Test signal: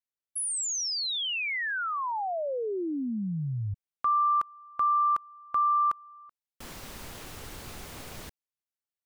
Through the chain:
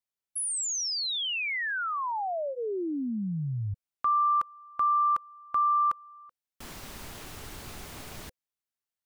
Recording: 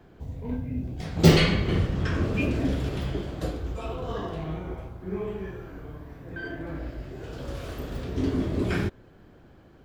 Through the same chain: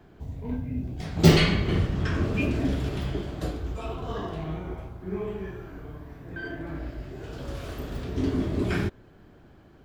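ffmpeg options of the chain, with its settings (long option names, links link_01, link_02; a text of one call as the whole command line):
ffmpeg -i in.wav -af "bandreject=frequency=510:width=12" out.wav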